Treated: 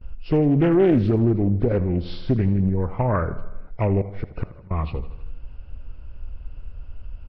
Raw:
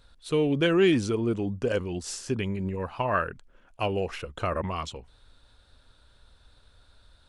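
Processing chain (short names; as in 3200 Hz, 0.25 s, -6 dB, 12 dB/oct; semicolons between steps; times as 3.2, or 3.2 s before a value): nonlinear frequency compression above 1400 Hz 1.5:1; gate with hold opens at -51 dBFS; tilt -4 dB/oct; compressor 1.5:1, threshold -29 dBFS, peak gain reduction 6.5 dB; 0.66–1.18 crackle 88/s -49 dBFS; 4.01–4.71 flipped gate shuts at -18 dBFS, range -26 dB; feedback echo 80 ms, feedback 60%, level -15 dB; Doppler distortion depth 0.38 ms; gain +4.5 dB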